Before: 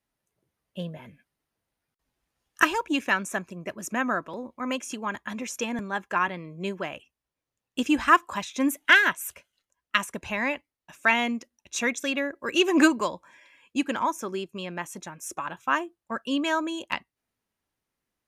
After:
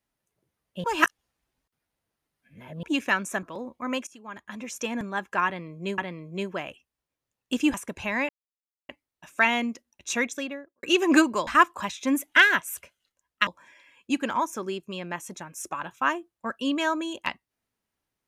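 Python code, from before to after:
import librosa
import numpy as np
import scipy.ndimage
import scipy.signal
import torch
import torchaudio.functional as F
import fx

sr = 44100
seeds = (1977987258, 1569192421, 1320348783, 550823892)

y = fx.studio_fade_out(x, sr, start_s=11.86, length_s=0.63)
y = fx.edit(y, sr, fx.reverse_span(start_s=0.84, length_s=1.99),
    fx.cut(start_s=3.43, length_s=0.78),
    fx.fade_in_from(start_s=4.85, length_s=0.87, floor_db=-20.0),
    fx.repeat(start_s=6.24, length_s=0.52, count=2),
    fx.move(start_s=8.0, length_s=2.0, to_s=13.13),
    fx.insert_silence(at_s=10.55, length_s=0.6), tone=tone)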